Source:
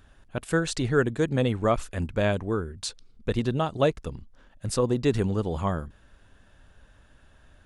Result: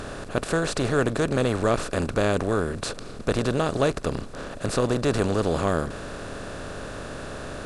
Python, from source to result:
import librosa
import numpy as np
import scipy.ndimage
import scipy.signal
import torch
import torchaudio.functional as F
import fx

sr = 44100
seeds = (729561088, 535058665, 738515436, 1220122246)

y = fx.bin_compress(x, sr, power=0.4)
y = y * librosa.db_to_amplitude(-3.5)